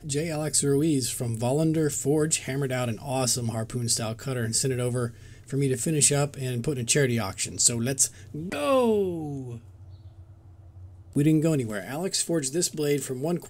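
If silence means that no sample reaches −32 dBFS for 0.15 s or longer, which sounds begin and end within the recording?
0:05.51–0:08.08
0:08.35–0:09.57

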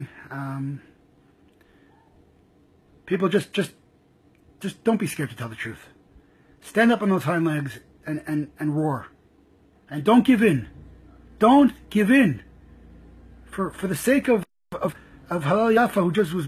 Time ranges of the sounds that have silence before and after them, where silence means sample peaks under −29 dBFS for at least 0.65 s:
0:03.08–0:03.66
0:04.62–0:05.72
0:06.68–0:09.00
0:09.92–0:10.64
0:11.41–0:12.37

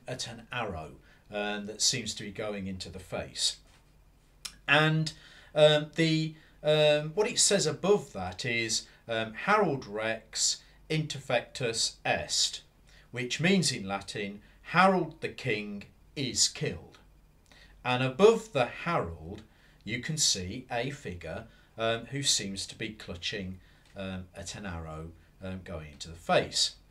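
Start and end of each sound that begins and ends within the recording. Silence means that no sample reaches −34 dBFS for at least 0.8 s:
0:04.45–0:16.76

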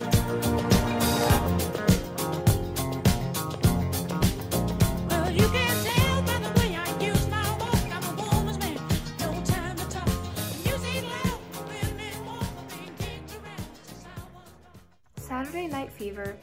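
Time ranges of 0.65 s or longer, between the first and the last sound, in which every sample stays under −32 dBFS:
0:14.22–0:15.17

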